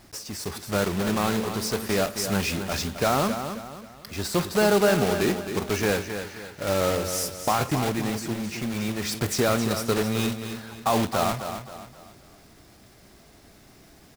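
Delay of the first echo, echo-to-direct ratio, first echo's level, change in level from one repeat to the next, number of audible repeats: 266 ms, -8.5 dB, -9.0 dB, -8.5 dB, 4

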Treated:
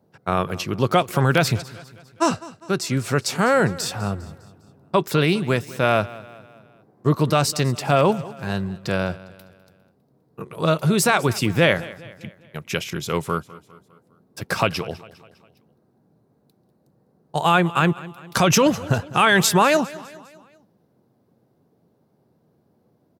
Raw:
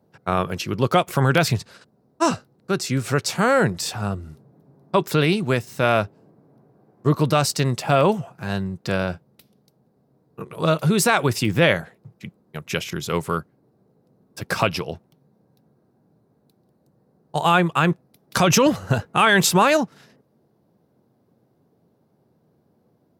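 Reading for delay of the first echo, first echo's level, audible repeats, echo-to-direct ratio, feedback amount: 202 ms, -19.0 dB, 3, -18.0 dB, 49%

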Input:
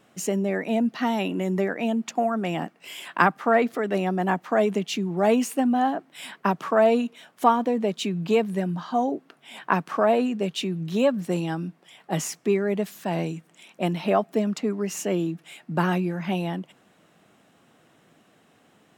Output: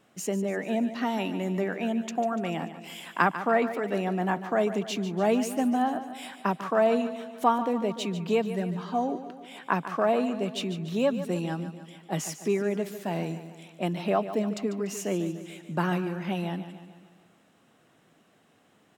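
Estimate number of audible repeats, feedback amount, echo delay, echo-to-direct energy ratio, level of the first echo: 5, 55%, 146 ms, -10.5 dB, -12.0 dB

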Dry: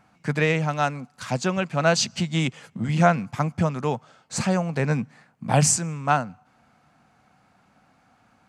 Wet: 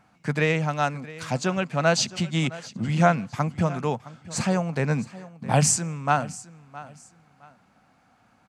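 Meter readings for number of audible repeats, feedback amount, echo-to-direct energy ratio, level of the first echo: 2, 27%, -17.5 dB, -18.0 dB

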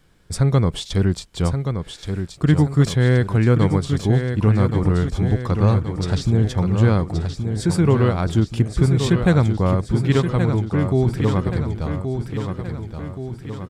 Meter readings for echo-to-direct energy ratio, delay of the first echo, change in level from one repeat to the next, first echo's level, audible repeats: -5.5 dB, 1125 ms, -5.5 dB, -7.0 dB, 6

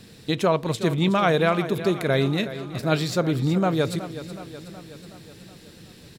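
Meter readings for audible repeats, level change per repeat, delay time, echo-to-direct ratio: 5, -4.5 dB, 371 ms, -11.0 dB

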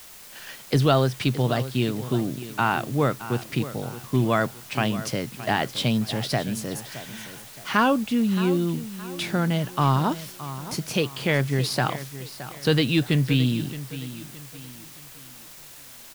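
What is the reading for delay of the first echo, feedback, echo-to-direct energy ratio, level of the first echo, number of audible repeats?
619 ms, 37%, -13.5 dB, -14.0 dB, 3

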